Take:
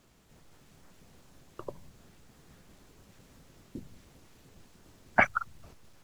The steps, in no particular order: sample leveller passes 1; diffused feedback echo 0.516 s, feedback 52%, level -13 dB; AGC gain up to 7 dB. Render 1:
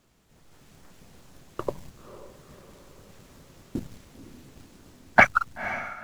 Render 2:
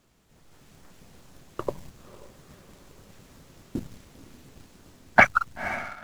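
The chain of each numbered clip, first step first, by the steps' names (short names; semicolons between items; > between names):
AGC > sample leveller > diffused feedback echo; AGC > diffused feedback echo > sample leveller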